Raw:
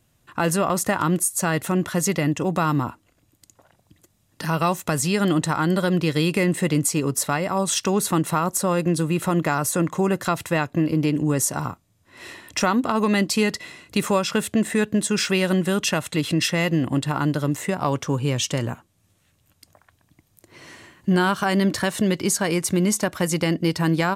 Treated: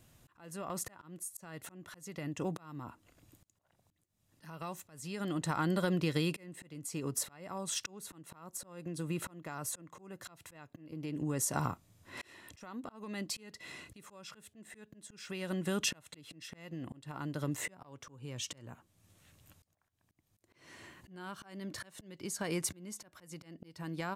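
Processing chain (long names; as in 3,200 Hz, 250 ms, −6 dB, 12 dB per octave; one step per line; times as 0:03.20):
downward compressor 8 to 1, threshold −29 dBFS, peak gain reduction 14 dB
volume swells 784 ms
level +1 dB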